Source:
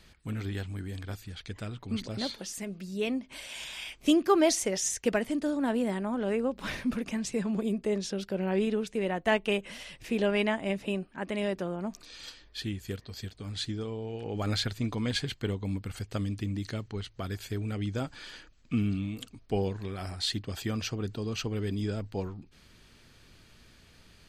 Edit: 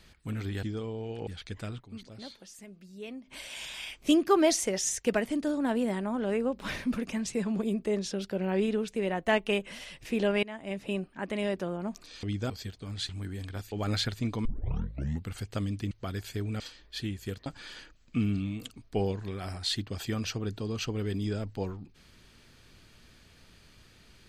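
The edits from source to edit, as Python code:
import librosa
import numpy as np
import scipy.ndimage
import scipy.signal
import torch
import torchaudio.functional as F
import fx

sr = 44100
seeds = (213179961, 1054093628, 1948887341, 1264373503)

y = fx.edit(x, sr, fx.swap(start_s=0.63, length_s=0.63, other_s=13.67, other_length_s=0.64),
    fx.fade_down_up(start_s=1.79, length_s=1.48, db=-11.0, fade_s=0.13, curve='exp'),
    fx.fade_in_from(start_s=10.42, length_s=0.54, floor_db=-20.5),
    fx.swap(start_s=12.22, length_s=0.86, other_s=17.76, other_length_s=0.27),
    fx.tape_start(start_s=15.04, length_s=0.84),
    fx.cut(start_s=16.5, length_s=0.57), tone=tone)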